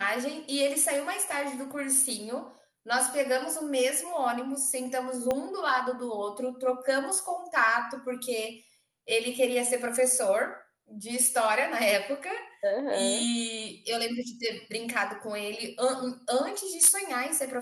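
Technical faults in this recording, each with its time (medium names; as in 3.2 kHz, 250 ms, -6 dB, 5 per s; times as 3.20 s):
5.31 s: pop -15 dBFS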